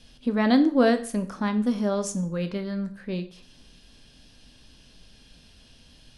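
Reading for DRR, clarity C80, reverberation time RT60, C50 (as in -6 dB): 8.5 dB, 17.5 dB, 0.45 s, 14.0 dB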